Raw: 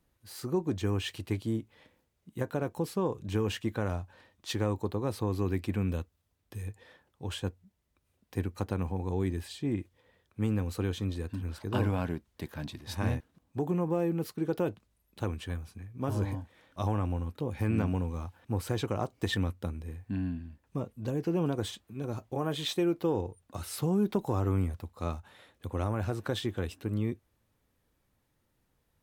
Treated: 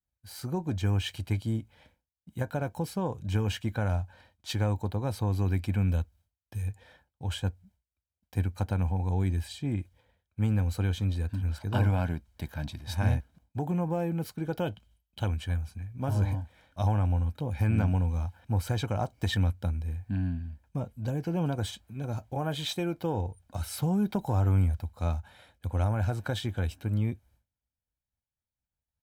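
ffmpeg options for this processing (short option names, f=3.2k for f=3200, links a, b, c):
-filter_complex "[0:a]asettb=1/sr,asplit=3[a][b][c];[a]atrim=end=14.604[d];[b]atrim=start=14.6:end=15.28,asetpts=PTS-STARTPTS,afade=t=in:d=0.004:c=qsin,afade=t=out:st=0.676:d=0.004:c=qsin,equalizer=f=3.1k:w=5.1:g=13.5[e];[c]atrim=start=15.276[f];[d][e]acrossfade=d=0.004:c1=hsin:c2=qsin[g];[g][f]acrossfade=d=0.004:c1=qsin:c2=hsin,agate=range=-33dB:threshold=-59dB:ratio=3:detection=peak,equalizer=f=61:t=o:w=0.96:g=8.5,aecho=1:1:1.3:0.52"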